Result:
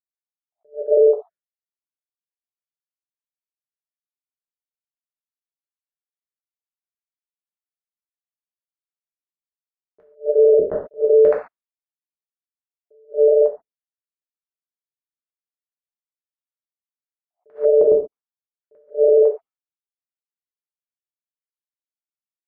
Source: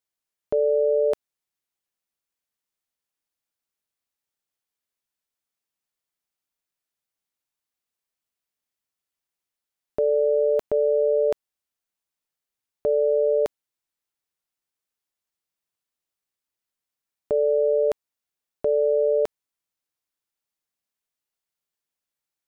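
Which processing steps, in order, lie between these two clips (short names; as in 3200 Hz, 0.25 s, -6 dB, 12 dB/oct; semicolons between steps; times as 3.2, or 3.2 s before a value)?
random spectral dropouts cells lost 48%; LFO low-pass square 1.6 Hz 420–1500 Hz; expander -39 dBFS; reverb, pre-delay 3 ms, DRR -1 dB; limiter -12.5 dBFS, peak gain reduction 6 dB; attack slew limiter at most 300 dB/s; gain +6 dB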